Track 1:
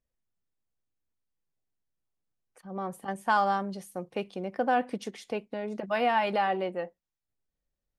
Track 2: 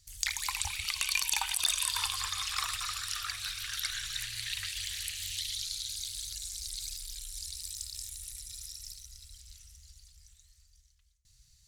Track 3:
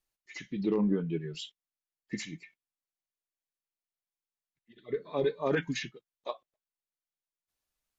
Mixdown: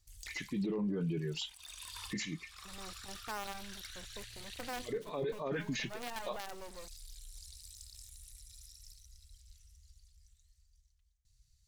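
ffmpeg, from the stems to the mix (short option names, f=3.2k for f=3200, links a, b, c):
-filter_complex "[0:a]lowshelf=f=190:g=7.5,acrusher=bits=4:dc=4:mix=0:aa=0.000001,volume=-13dB[a];[1:a]lowshelf=f=130:g=9.5,asoftclip=type=tanh:threshold=-25.5dB,volume=-12dB[b];[2:a]volume=2dB,asplit=2[c][d];[d]apad=whole_len=514921[e];[b][e]sidechaincompress=threshold=-45dB:ratio=12:attack=16:release=526[f];[a][f][c]amix=inputs=3:normalize=0,alimiter=level_in=5dB:limit=-24dB:level=0:latency=1:release=15,volume=-5dB"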